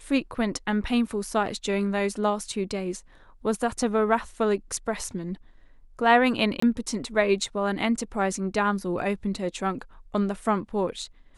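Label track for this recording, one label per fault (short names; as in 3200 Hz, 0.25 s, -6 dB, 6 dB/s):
6.600000	6.620000	gap 24 ms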